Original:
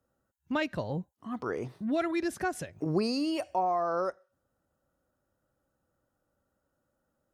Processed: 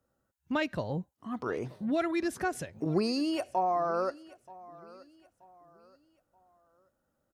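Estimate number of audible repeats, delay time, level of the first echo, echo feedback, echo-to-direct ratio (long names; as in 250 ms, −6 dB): 2, 929 ms, −21.0 dB, 36%, −20.5 dB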